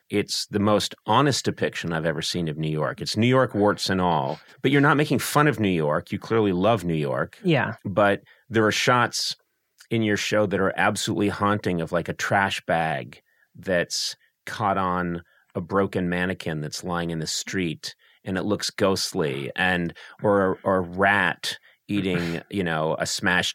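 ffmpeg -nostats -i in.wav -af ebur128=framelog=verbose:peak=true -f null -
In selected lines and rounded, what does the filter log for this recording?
Integrated loudness:
  I:         -23.6 LUFS
  Threshold: -33.9 LUFS
Loudness range:
  LRA:         4.9 LU
  Threshold: -43.9 LUFS
  LRA low:   -26.7 LUFS
  LRA high:  -21.9 LUFS
True peak:
  Peak:       -3.2 dBFS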